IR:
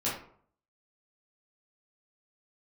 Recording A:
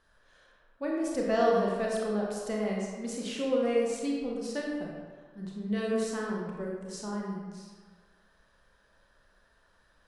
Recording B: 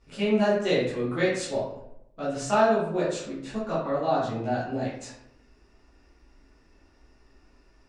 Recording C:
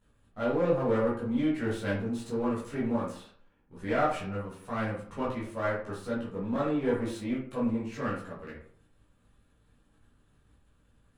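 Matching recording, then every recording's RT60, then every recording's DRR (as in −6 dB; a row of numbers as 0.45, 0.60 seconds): C; 1.5, 0.80, 0.55 seconds; −2.5, −10.5, −9.0 decibels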